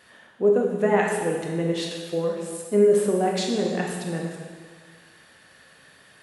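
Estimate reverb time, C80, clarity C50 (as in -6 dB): 1.6 s, 4.0 dB, 2.0 dB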